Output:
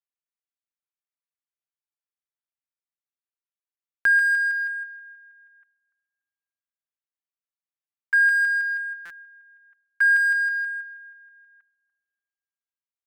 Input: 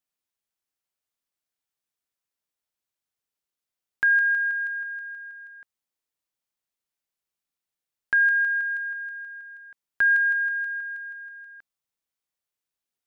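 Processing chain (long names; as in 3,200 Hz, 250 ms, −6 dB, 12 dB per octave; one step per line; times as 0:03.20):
adaptive Wiener filter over 9 samples
noise gate −33 dBFS, range −10 dB
high-pass filter 1,100 Hz 12 dB per octave
comb filter 5.1 ms, depth 84%
feedback echo with a low-pass in the loop 292 ms, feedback 38%, low-pass 1,800 Hz, level −18 dB
buffer that repeats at 0:04.00/0:09.05, samples 256, times 8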